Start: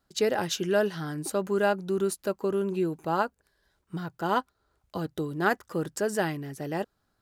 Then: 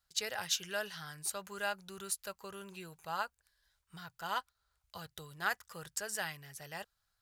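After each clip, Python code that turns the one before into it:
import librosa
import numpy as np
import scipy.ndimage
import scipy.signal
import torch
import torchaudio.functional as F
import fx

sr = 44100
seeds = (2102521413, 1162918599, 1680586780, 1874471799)

y = fx.tone_stack(x, sr, knobs='10-0-10')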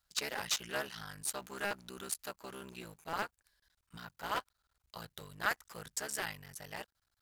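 y = fx.cycle_switch(x, sr, every=3, mode='muted')
y = y * 10.0 ** (1.5 / 20.0)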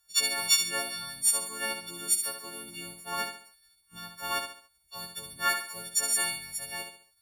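y = fx.freq_snap(x, sr, grid_st=4)
y = fx.echo_feedback(y, sr, ms=69, feedback_pct=38, wet_db=-7)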